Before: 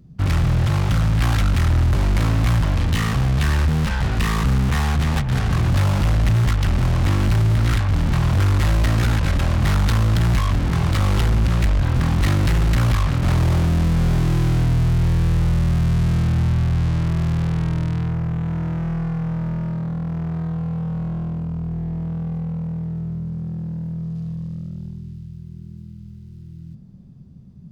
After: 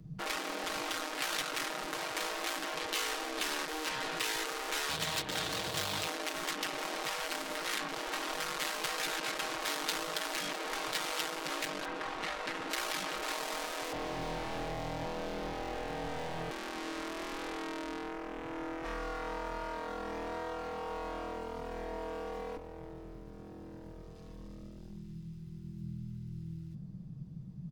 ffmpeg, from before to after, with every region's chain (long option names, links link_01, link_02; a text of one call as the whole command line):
ffmpeg -i in.wav -filter_complex "[0:a]asettb=1/sr,asplit=3[link_01][link_02][link_03];[link_01]atrim=end=4.894[link_04];[link_02]atrim=start=4.89:end=6.08,asetpts=PTS-STARTPTS,afade=type=in:duration=0.004:curve=qsin,afade=type=out:start_time=1.186:duration=0.004:curve=qsin,equalizer=frequency=3700:width=1.8:gain=8,aeval=exprs='0.119*(abs(mod(val(0)/0.119+3,4)-2)-1)':channel_layout=same,highpass=190[link_05];[link_03]atrim=start=6.076[link_06];[link_04][link_05]acrossfade=duration=0.004:curve1=hsin:curve2=qsin[link_07];[link_07][link_06]acrossfade=duration=0.004:curve1=qsin:curve2=hsin,asettb=1/sr,asplit=3[link_08][link_09][link_10];[link_08]atrim=end=11.854[link_11];[link_09]atrim=start=11.85:end=12.7,asetpts=PTS-STARTPTS,afade=type=in:duration=0.004:curve=qsin,afade=type=out:start_time=0.846:duration=0.004:curve=qsin,highpass=frequency=670:poles=1,aemphasis=mode=reproduction:type=riaa[link_12];[link_10]atrim=start=12.696[link_13];[link_11][link_12]acrossfade=duration=0.004:curve1=hsin:curve2=qsin[link_14];[link_14][link_13]acrossfade=duration=0.004:curve1=qsin:curve2=hsin,asettb=1/sr,asplit=3[link_15][link_16][link_17];[link_15]atrim=end=13.924[link_18];[link_16]atrim=start=13.92:end=16.51,asetpts=PTS-STARTPTS,afade=type=in:duration=0.004:curve=qsin,afade=type=out:start_time=2.586:duration=0.004:curve=qsin,acrossover=split=3000[link_19][link_20];[link_20]acompressor=threshold=-57dB:ratio=4:attack=1:release=60[link_21];[link_19][link_21]amix=inputs=2:normalize=0,aeval=exprs='0.0596*(abs(mod(val(0)/0.0596+3,4)-2)-1)':channel_layout=same[link_22];[link_17]atrim=start=16.506[link_23];[link_18][link_22]acrossfade=duration=0.004:curve1=hsin:curve2=qsin[link_24];[link_24][link_23]acrossfade=duration=0.004:curve1=qsin:curve2=hsin,asettb=1/sr,asplit=3[link_25][link_26][link_27];[link_25]atrim=end=18.844[link_28];[link_26]atrim=start=18.84:end=22.57,asetpts=PTS-STARTPTS,afade=type=in:duration=0.004:curve=qsin,afade=type=out:start_time=3.726:duration=0.004:curve=qsin,bass=frequency=250:gain=-5,treble=frequency=4000:gain=8,aecho=1:1:4.3:0.57,atrim=end_sample=164493,asplit=2[link_29][link_30];[link_30]highpass=frequency=720:poles=1,volume=17dB,asoftclip=type=tanh:threshold=-19.5dB[link_31];[link_29][link_31]amix=inputs=2:normalize=0,lowpass=frequency=3200:poles=1,volume=-6dB[link_32];[link_27]atrim=start=22.566[link_33];[link_28][link_32]acrossfade=duration=0.004:curve1=hsin:curve2=qsin[link_34];[link_34][link_33]acrossfade=duration=0.004:curve1=qsin:curve2=hsin,afftfilt=real='re*lt(hypot(re,im),0.158)':imag='im*lt(hypot(re,im),0.158)':win_size=1024:overlap=0.75,aecho=1:1:6.4:0.61,acrossover=split=130|3000[link_35][link_36][link_37];[link_36]acompressor=threshold=-31dB:ratio=6[link_38];[link_35][link_38][link_37]amix=inputs=3:normalize=0,volume=-4dB" out.wav